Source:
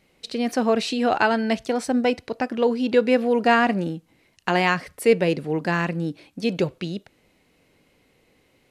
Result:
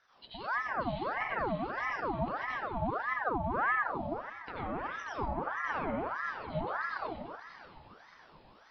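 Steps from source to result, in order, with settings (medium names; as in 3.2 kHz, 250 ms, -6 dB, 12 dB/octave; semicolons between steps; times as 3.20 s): knee-point frequency compression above 3.3 kHz 4:1; low-pass that closes with the level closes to 520 Hz, closed at -15 dBFS; bass shelf 250 Hz +7.5 dB; reverse; compression 10:1, threshold -30 dBFS, peak gain reduction 19 dB; reverse; two-band feedback delay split 380 Hz, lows 127 ms, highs 582 ms, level -8 dB; plate-style reverb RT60 0.8 s, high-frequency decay 0.55×, pre-delay 75 ms, DRR -7 dB; ring modulator with a swept carrier 960 Hz, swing 60%, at 1.6 Hz; trim -8.5 dB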